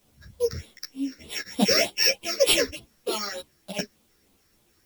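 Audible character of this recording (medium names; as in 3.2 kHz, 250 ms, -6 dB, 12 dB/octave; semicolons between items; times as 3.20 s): a buzz of ramps at a fixed pitch in blocks of 8 samples; phasing stages 6, 3.3 Hz, lowest notch 800–1700 Hz; a quantiser's noise floor 12-bit, dither triangular; a shimmering, thickened sound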